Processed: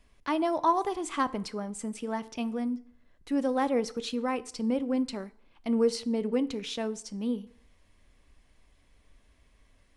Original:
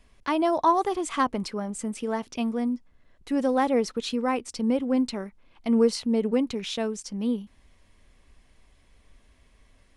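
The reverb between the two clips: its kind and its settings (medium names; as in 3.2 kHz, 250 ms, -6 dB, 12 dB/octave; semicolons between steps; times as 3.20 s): FDN reverb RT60 0.64 s, low-frequency decay 0.9×, high-frequency decay 0.75×, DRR 14.5 dB; trim -4 dB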